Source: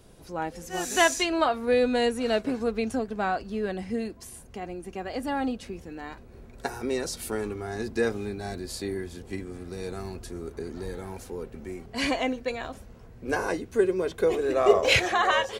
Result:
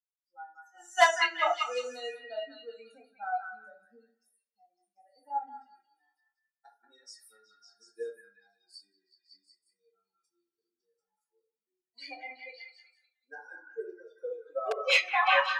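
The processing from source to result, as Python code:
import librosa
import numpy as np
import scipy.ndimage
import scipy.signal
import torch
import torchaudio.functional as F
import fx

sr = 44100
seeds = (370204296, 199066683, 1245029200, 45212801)

p1 = fx.bin_expand(x, sr, power=3.0)
p2 = fx.room_shoebox(p1, sr, seeds[0], volume_m3=180.0, walls='furnished', distance_m=2.0)
p3 = (np.mod(10.0 ** (13.5 / 20.0) * p2 + 1.0, 2.0) - 1.0) / 10.0 ** (13.5 / 20.0)
p4 = p2 + (p3 * librosa.db_to_amplitude(-10.0))
p5 = scipy.signal.sosfilt(scipy.signal.butter(4, 560.0, 'highpass', fs=sr, output='sos'), p4)
p6 = fx.air_absorb(p5, sr, metres=75.0)
p7 = p6 + fx.echo_stepped(p6, sr, ms=185, hz=1500.0, octaves=0.7, feedback_pct=70, wet_db=-1, dry=0)
y = fx.upward_expand(p7, sr, threshold_db=-30.0, expansion=1.5)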